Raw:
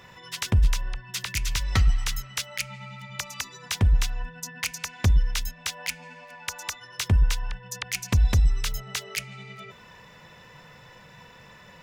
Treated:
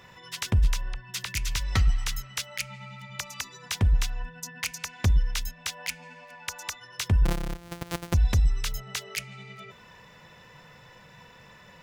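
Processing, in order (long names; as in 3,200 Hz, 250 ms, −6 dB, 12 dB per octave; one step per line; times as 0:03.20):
0:07.25–0:08.14: samples sorted by size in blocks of 256 samples
level −2 dB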